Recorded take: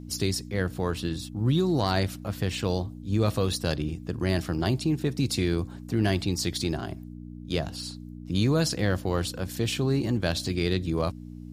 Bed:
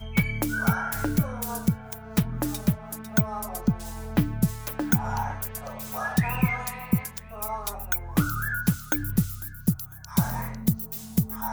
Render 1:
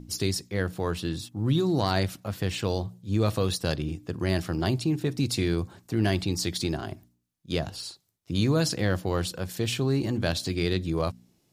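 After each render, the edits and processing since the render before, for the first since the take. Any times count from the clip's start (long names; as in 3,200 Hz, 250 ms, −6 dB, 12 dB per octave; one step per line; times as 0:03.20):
hum removal 60 Hz, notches 5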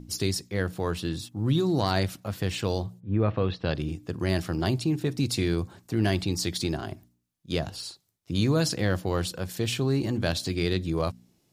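0:02.99–0:03.74: low-pass filter 1,800 Hz → 4,000 Hz 24 dB per octave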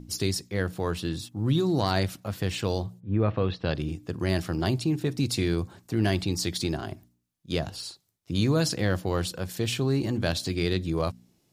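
no processing that can be heard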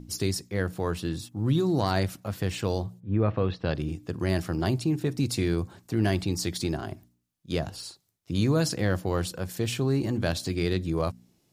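dynamic equaliser 3,600 Hz, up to −4 dB, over −48 dBFS, Q 1.2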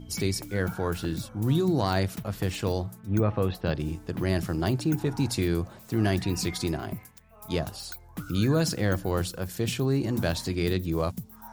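mix in bed −14.5 dB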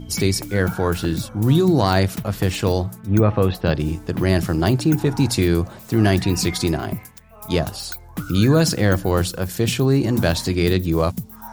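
level +8.5 dB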